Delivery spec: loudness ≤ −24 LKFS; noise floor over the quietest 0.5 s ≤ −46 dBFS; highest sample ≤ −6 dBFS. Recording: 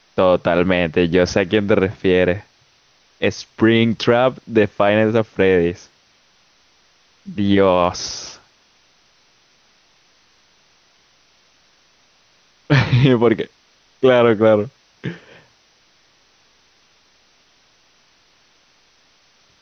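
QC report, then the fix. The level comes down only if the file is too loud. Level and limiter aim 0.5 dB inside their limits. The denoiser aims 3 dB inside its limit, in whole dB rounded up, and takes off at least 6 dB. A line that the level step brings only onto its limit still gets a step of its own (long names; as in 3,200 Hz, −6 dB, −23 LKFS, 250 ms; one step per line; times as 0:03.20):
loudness −16.5 LKFS: out of spec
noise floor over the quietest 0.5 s −57 dBFS: in spec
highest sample −2.5 dBFS: out of spec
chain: level −8 dB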